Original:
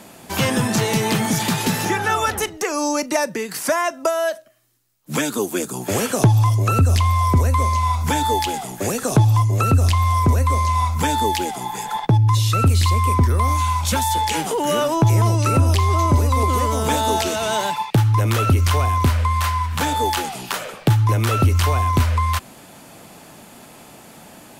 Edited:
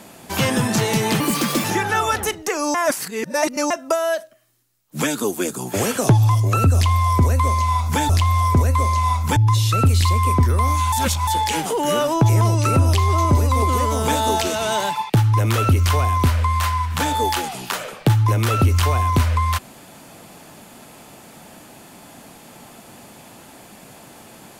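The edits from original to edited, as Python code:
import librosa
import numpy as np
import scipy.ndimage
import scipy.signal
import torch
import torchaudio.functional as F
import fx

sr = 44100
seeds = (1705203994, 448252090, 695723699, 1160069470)

y = fx.edit(x, sr, fx.speed_span(start_s=1.2, length_s=0.59, speed=1.33),
    fx.reverse_span(start_s=2.89, length_s=0.96),
    fx.cut(start_s=8.24, length_s=1.57),
    fx.cut(start_s=11.08, length_s=1.09),
    fx.reverse_span(start_s=13.73, length_s=0.35), tone=tone)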